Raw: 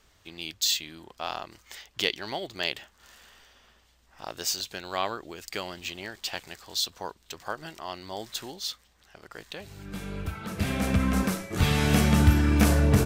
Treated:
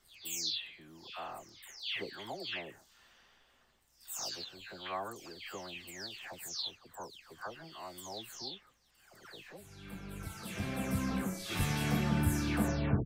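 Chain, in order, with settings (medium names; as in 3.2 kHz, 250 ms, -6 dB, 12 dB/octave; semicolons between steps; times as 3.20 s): delay that grows with frequency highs early, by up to 367 ms; trim -8 dB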